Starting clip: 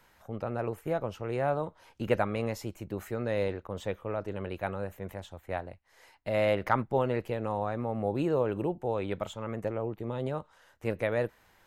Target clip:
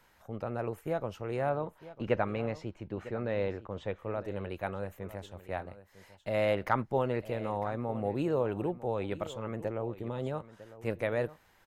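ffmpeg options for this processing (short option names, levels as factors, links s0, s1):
-filter_complex "[0:a]asettb=1/sr,asplit=3[s0][s1][s2];[s0]atrim=end=1.494[s3];[s1]atrim=start=1.49:end=3.99,asetpts=PTS-STARTPTS,afade=t=in:d=0.004:c=qsin,afade=t=out:st=2.496:d=0.004:c=qsin,lowpass=3600[s4];[s2]atrim=start=3.986[s5];[s3][s4]acrossfade=d=0.004:c1=hsin:c2=qsin[s6];[s6][s5]acrossfade=d=0.004:c1=qsin:c2=hsin,aecho=1:1:952:0.158,volume=0.794"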